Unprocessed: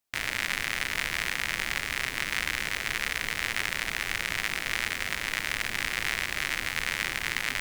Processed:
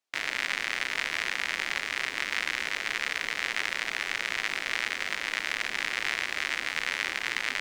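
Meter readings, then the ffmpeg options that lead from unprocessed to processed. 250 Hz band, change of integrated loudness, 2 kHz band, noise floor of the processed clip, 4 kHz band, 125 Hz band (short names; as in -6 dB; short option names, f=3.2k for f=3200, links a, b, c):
-3.5 dB, -0.5 dB, 0.0 dB, -38 dBFS, -0.5 dB, under -10 dB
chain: -filter_complex "[0:a]acrossover=split=230 7400:gain=0.158 1 0.2[a][b][c];[a][b][c]amix=inputs=3:normalize=0"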